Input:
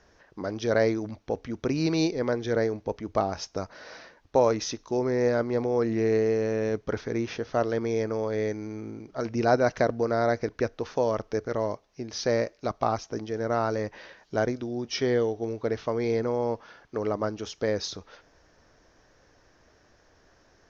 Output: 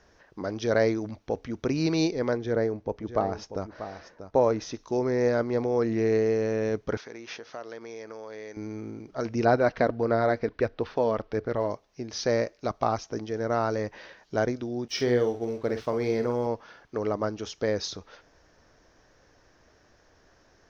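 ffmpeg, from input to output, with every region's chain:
ffmpeg -i in.wav -filter_complex "[0:a]asettb=1/sr,asplit=3[link_01][link_02][link_03];[link_01]atrim=end=2.374[link_04];[link_02]atrim=start=2.37:end=4.74,asetpts=PTS-STARTPTS,afade=type=in:duration=0.004:curve=qsin,afade=type=out:start_time=2.366:duration=0.004:curve=qsin,highshelf=frequency=2100:gain=-9,aecho=1:1:638:0.282,atrim=end_sample=104517[link_05];[link_03]atrim=start=4.736[link_06];[link_04][link_05]acrossfade=duration=0.004:curve1=hsin:curve2=qsin[link_07];[link_07][link_06]acrossfade=duration=0.004:curve1=qsin:curve2=hsin,asettb=1/sr,asplit=3[link_08][link_09][link_10];[link_08]atrim=end=6.974[link_11];[link_09]atrim=start=6.97:end=8.57,asetpts=PTS-STARTPTS,afade=type=in:duration=0.004:curve=qsin,afade=type=out:start_time=1.596:duration=0.004:curve=qsin,acompressor=threshold=-32dB:ratio=3:attack=3.2:release=140:knee=1:detection=peak,highpass=frequency=770:poles=1[link_12];[link_10]atrim=start=8.566[link_13];[link_11][link_12]acrossfade=duration=0.004:curve1=hsin:curve2=qsin[link_14];[link_14][link_13]acrossfade=duration=0.004:curve1=qsin:curve2=hsin,asettb=1/sr,asplit=3[link_15][link_16][link_17];[link_15]atrim=end=9.454[link_18];[link_16]atrim=start=9.45:end=11.7,asetpts=PTS-STARTPTS,afade=type=in:duration=0.004:curve=qsin,afade=type=out:start_time=2.246:duration=0.004:curve=qsin,lowpass=frequency=4400:width=0.5412,lowpass=frequency=4400:width=1.3066,aphaser=in_gain=1:out_gain=1:delay=4.4:decay=0.26:speed=1.5:type=sinusoidal[link_19];[link_17]atrim=start=11.696[link_20];[link_18][link_19]acrossfade=duration=0.004:curve1=hsin:curve2=qsin[link_21];[link_21][link_20]acrossfade=duration=0.004:curve1=qsin:curve2=hsin,asettb=1/sr,asplit=3[link_22][link_23][link_24];[link_22]atrim=end=14.884[link_25];[link_23]atrim=start=14.88:end=16.47,asetpts=PTS-STARTPTS,afade=type=in:duration=0.004:curve=qsin,afade=type=out:start_time=1.586:duration=0.004:curve=qsin,asplit=2[link_26][link_27];[link_27]adelay=49,volume=-8.5dB[link_28];[link_26][link_28]amix=inputs=2:normalize=0,atrim=end_sample=70119,aeval=exprs='sgn(val(0))*max(abs(val(0))-0.00178,0)':channel_layout=same[link_29];[link_24]atrim=start=16.466[link_30];[link_25][link_29]acrossfade=duration=0.004:curve1=hsin:curve2=qsin[link_31];[link_31][link_30]acrossfade=duration=0.004:curve1=qsin:curve2=hsin" out.wav

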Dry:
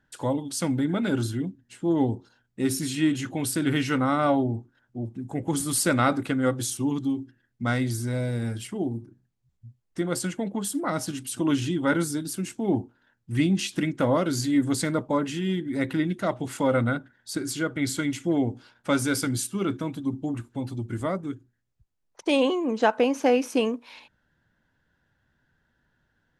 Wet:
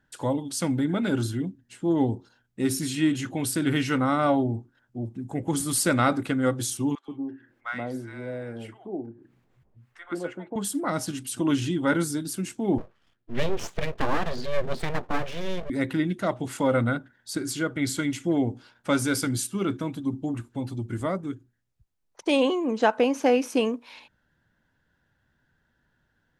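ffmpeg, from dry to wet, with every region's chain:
ffmpeg -i in.wav -filter_complex "[0:a]asettb=1/sr,asplit=3[link_01][link_02][link_03];[link_01]atrim=end=6.954[link_04];[link_02]atrim=start=6.95:end=10.56,asetpts=PTS-STARTPTS,afade=type=in:duration=0.004:curve=qsin,afade=type=out:start_time=3.606:duration=0.004:curve=qsin,acrossover=split=310 2500:gain=0.2 1 0.112[link_05][link_06][link_07];[link_05][link_06][link_07]amix=inputs=3:normalize=0,acompressor=mode=upward:threshold=-44dB:ratio=2.5:attack=3.2:release=140:knee=2.83:detection=peak,acrossover=split=920[link_08][link_09];[link_08]adelay=130[link_10];[link_10][link_09]amix=inputs=2:normalize=0,atrim=end_sample=159201[link_11];[link_03]atrim=start=10.556[link_12];[link_04][link_11]acrossfade=duration=0.004:curve1=hsin:curve2=qsin[link_13];[link_13][link_12]acrossfade=duration=0.004:curve1=qsin:curve2=hsin,asettb=1/sr,asplit=3[link_14][link_15][link_16];[link_14]atrim=end=12.784[link_17];[link_15]atrim=start=12.78:end=15.7,asetpts=PTS-STARTPTS,afade=type=in:duration=0.004:curve=qsin,afade=type=out:start_time=2.916:duration=0.004:curve=qsin,lowpass=frequency=3900:width=0.5412,lowpass=frequency=3900:width=1.3066,aeval=exprs='abs(val(0))':channel_layout=same[link_18];[link_16]atrim=start=15.696[link_19];[link_17][link_18]acrossfade=duration=0.004:curve1=hsin:curve2=qsin[link_20];[link_20][link_19]acrossfade=duration=0.004:curve1=qsin:curve2=hsin" out.wav

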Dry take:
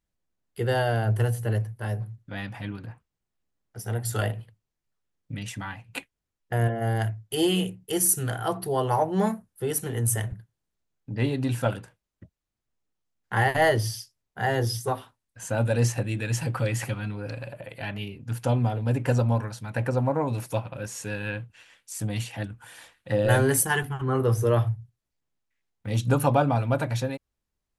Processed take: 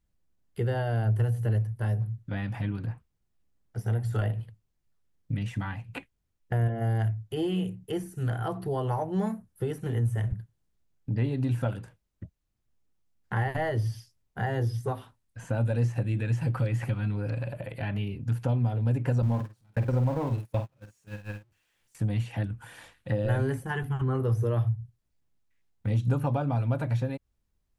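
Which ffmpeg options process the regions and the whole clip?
ffmpeg -i in.wav -filter_complex "[0:a]asettb=1/sr,asplit=3[link_01][link_02][link_03];[link_01]atrim=end=19.224[link_04];[link_02]atrim=start=19.22:end=21.95,asetpts=PTS-STARTPTS,afade=type=in:duration=0.004:curve=qsin,afade=type=out:start_time=2.726:duration=0.004:curve=qsin,aeval=exprs='val(0)+0.5*0.0299*sgn(val(0))':channel_layout=same,agate=range=-39dB:threshold=-26dB:ratio=16:release=100:detection=peak,asplit=2[link_05][link_06];[link_06]adelay=48,volume=-8.5dB[link_07];[link_05][link_07]amix=inputs=2:normalize=0,atrim=end_sample=120393[link_08];[link_03]atrim=start=21.946[link_09];[link_04][link_08]acrossfade=duration=0.004:curve1=hsin:curve2=qsin[link_10];[link_10][link_09]acrossfade=duration=0.004:curve1=qsin:curve2=hsin,acompressor=threshold=-33dB:ratio=2.5,lowshelf=frequency=230:gain=9.5,acrossover=split=2800[link_11][link_12];[link_12]acompressor=threshold=-53dB:ratio=4:attack=1:release=60[link_13];[link_11][link_13]amix=inputs=2:normalize=0" out.wav

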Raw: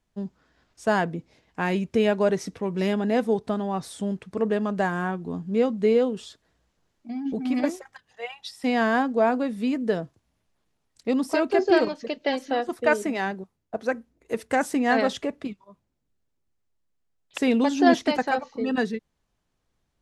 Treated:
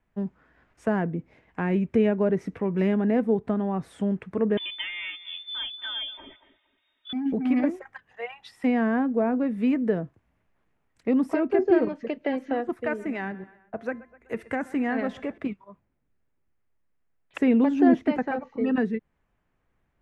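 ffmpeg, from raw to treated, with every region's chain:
ffmpeg -i in.wav -filter_complex "[0:a]asettb=1/sr,asplit=3[link_01][link_02][link_03];[link_01]atrim=end=4.574[link_04];[link_02]atrim=start=4.57:end=7.13,asetpts=PTS-STARTPTS,afade=type=in:duration=0.004:curve=qsin,afade=type=out:start_time=2.556:duration=0.004:curve=qsin,lowpass=frequency=3100:width_type=q:width=0.5098,lowpass=frequency=3100:width_type=q:width=0.6013,lowpass=frequency=3100:width_type=q:width=0.9,lowpass=frequency=3100:width_type=q:width=2.563,afreqshift=-3700,aecho=1:1:3.2:0.98,atrim=end_sample=112896,asplit=2[link_05][link_06];[link_06]adelay=231,lowpass=frequency=970:poles=1,volume=-15dB,asplit=2[link_07][link_08];[link_08]adelay=231,lowpass=frequency=970:poles=1,volume=0.28,asplit=2[link_09][link_10];[link_10]adelay=231,lowpass=frequency=970:poles=1,volume=0.28[link_11];[link_05][link_07][link_09][link_11]amix=inputs=4:normalize=0,atrim=end_sample=112896[link_12];[link_03]atrim=start=7.126[link_13];[link_04][link_12]acrossfade=duration=0.004:curve1=hsin:curve2=qsin[link_14];[link_14][link_13]acrossfade=duration=0.004:curve1=qsin:curve2=hsin,asettb=1/sr,asplit=3[link_15][link_16][link_17];[link_15]atrim=end=12.724[link_18];[link_16]atrim=start=12.72:end=15.38,asetpts=PTS-STARTPTS,afade=type=in:duration=0.004:curve=qsin,afade=type=out:start_time=2.656:duration=0.004:curve=qsin,equalizer=frequency=400:width=0.47:gain=-5,bandreject=frequency=345.8:width_type=h:width=4,bandreject=frequency=691.6:width_type=h:width=4,bandreject=frequency=1037.4:width_type=h:width=4,bandreject=frequency=1383.2:width_type=h:width=4,bandreject=frequency=1729:width_type=h:width=4,bandreject=frequency=2074.8:width_type=h:width=4,bandreject=frequency=2420.6:width_type=h:width=4,bandreject=frequency=2766.4:width_type=h:width=4,bandreject=frequency=3112.2:width_type=h:width=4,bandreject=frequency=3458:width_type=h:width=4,bandreject=frequency=3803.8:width_type=h:width=4,bandreject=frequency=4149.6:width_type=h:width=4,bandreject=frequency=4495.4:width_type=h:width=4,bandreject=frequency=4841.2:width_type=h:width=4,bandreject=frequency=5187:width_type=h:width=4,bandreject=frequency=5532.8:width_type=h:width=4,bandreject=frequency=5878.6:width_type=h:width=4,bandreject=frequency=6224.4:width_type=h:width=4,bandreject=frequency=6570.2:width_type=h:width=4,bandreject=frequency=6916:width_type=h:width=4,bandreject=frequency=7261.8:width_type=h:width=4,bandreject=frequency=7607.6:width_type=h:width=4,bandreject=frequency=7953.4:width_type=h:width=4,bandreject=frequency=8299.2:width_type=h:width=4,bandreject=frequency=8645:width_type=h:width=4,bandreject=frequency=8990.8:width_type=h:width=4,bandreject=frequency=9336.6:width_type=h:width=4,bandreject=frequency=9682.4:width_type=h:width=4,bandreject=frequency=10028.2:width_type=h:width=4,bandreject=frequency=10374:width_type=h:width=4,asplit=2[link_19][link_20];[link_20]adelay=125,lowpass=frequency=4200:poles=1,volume=-22.5dB,asplit=2[link_21][link_22];[link_22]adelay=125,lowpass=frequency=4200:poles=1,volume=0.48,asplit=2[link_23][link_24];[link_24]adelay=125,lowpass=frequency=4200:poles=1,volume=0.48[link_25];[link_19][link_21][link_23][link_25]amix=inputs=4:normalize=0,atrim=end_sample=117306[link_26];[link_17]atrim=start=15.376[link_27];[link_18][link_26]acrossfade=duration=0.004:curve1=hsin:curve2=qsin[link_28];[link_28][link_27]acrossfade=duration=0.004:curve1=qsin:curve2=hsin,highshelf=frequency=3100:width_type=q:width=1.5:gain=-12.5,acrossover=split=440[link_29][link_30];[link_30]acompressor=threshold=-38dB:ratio=2.5[link_31];[link_29][link_31]amix=inputs=2:normalize=0,volume=2.5dB" out.wav

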